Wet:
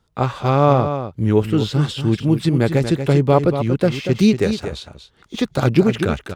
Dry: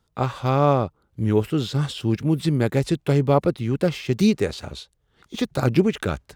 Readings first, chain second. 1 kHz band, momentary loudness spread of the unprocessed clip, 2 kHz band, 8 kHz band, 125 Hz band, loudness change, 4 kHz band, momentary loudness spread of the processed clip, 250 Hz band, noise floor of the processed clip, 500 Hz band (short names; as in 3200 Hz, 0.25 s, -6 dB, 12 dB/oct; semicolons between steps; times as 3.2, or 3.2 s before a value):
+4.5 dB, 10 LU, +4.5 dB, +2.5 dB, +4.5 dB, +4.5 dB, +4.0 dB, 9 LU, +4.5 dB, -57 dBFS, +4.5 dB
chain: high shelf 9200 Hz -6.5 dB; on a send: echo 0.236 s -9 dB; on the sum: gain +4 dB